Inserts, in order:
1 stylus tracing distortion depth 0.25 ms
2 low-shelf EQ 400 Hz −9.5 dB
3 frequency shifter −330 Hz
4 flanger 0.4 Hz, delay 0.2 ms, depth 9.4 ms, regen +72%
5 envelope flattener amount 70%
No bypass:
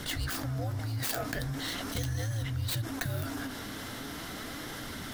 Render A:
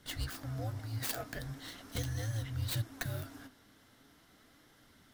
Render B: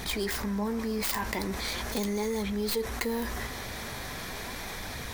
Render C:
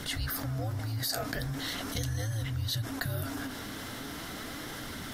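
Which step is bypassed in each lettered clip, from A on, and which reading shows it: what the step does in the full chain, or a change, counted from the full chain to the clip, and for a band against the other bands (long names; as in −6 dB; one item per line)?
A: 5, change in crest factor +2.5 dB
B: 3, 125 Hz band −11.5 dB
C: 1, change in crest factor +2.0 dB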